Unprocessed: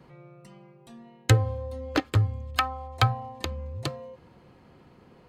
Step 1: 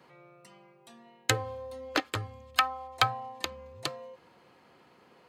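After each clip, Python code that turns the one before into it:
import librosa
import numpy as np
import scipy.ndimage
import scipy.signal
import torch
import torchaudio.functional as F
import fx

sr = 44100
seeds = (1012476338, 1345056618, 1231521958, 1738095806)

y = fx.highpass(x, sr, hz=750.0, slope=6)
y = y * 10.0 ** (1.5 / 20.0)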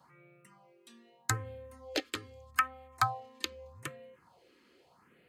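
y = fx.phaser_stages(x, sr, stages=4, low_hz=120.0, high_hz=1000.0, hz=0.81, feedback_pct=20)
y = y * 10.0 ** (-1.5 / 20.0)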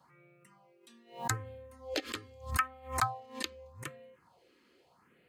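y = fx.pre_swell(x, sr, db_per_s=140.0)
y = y * 10.0 ** (-2.0 / 20.0)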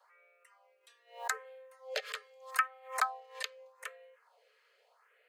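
y = scipy.signal.sosfilt(scipy.signal.cheby1(6, 6, 430.0, 'highpass', fs=sr, output='sos'), x)
y = y * 10.0 ** (2.5 / 20.0)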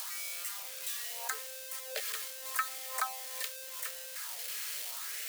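y = x + 0.5 * 10.0 ** (-24.5 / 20.0) * np.diff(np.sign(x), prepend=np.sign(x[:1]))
y = y * 10.0 ** (-4.0 / 20.0)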